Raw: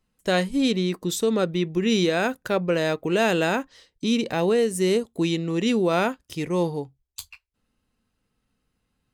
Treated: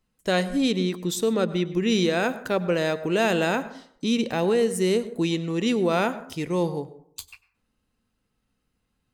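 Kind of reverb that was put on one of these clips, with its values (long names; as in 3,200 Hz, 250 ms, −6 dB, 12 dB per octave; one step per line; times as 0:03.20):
dense smooth reverb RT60 0.61 s, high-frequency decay 0.4×, pre-delay 85 ms, DRR 14.5 dB
level −1 dB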